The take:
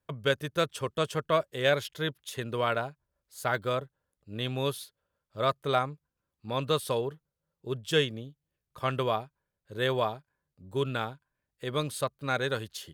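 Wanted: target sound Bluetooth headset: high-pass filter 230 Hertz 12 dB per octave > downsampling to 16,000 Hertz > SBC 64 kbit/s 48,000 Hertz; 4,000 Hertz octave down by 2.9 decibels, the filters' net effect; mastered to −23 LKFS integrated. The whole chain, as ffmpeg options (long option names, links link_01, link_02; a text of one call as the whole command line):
ffmpeg -i in.wav -af "highpass=230,equalizer=frequency=4000:width_type=o:gain=-3.5,aresample=16000,aresample=44100,volume=9dB" -ar 48000 -c:a sbc -b:a 64k out.sbc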